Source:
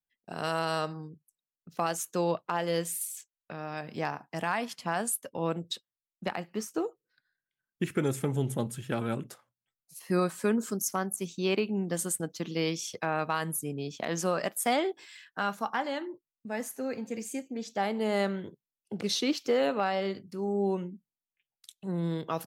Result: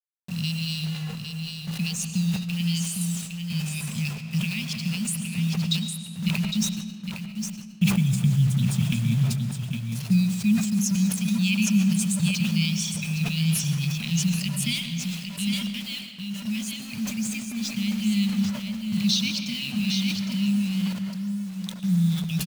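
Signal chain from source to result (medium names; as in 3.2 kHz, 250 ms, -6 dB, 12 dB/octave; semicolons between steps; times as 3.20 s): Chebyshev band-stop 210–2400 Hz, order 5; reverb removal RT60 0.72 s; low-pass 6.5 kHz 12 dB/octave; bass shelf 470 Hz +6 dB; de-hum 65.34 Hz, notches 5; in parallel at +1 dB: compression 8:1, threshold -40 dBFS, peak gain reduction 15.5 dB; on the sum: bit crusher 8-bit; delay 809 ms -6 dB; on a send at -7 dB: reverberation RT60 2.1 s, pre-delay 75 ms; on the sum: decay stretcher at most 65 dB/s; trim +6 dB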